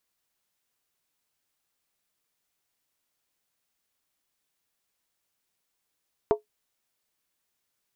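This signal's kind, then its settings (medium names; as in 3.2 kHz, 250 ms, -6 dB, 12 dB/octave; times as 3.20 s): skin hit, lowest mode 424 Hz, decay 0.13 s, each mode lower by 5.5 dB, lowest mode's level -14 dB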